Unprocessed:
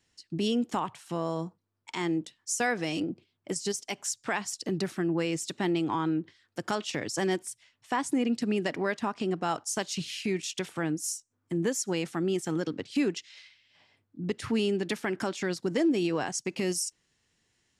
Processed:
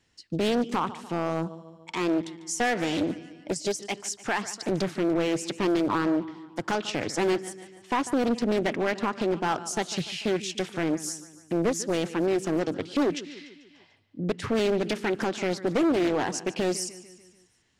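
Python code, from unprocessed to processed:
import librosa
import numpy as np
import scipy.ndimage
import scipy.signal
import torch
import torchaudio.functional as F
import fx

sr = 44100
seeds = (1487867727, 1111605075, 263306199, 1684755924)

p1 = fx.high_shelf(x, sr, hz=6000.0, db=-8.5)
p2 = p1 + fx.echo_feedback(p1, sr, ms=147, feedback_pct=54, wet_db=-17.0, dry=0)
p3 = np.clip(10.0 ** (24.0 / 20.0) * p2, -1.0, 1.0) / 10.0 ** (24.0 / 20.0)
p4 = fx.doppler_dist(p3, sr, depth_ms=0.57)
y = F.gain(torch.from_numpy(p4), 5.0).numpy()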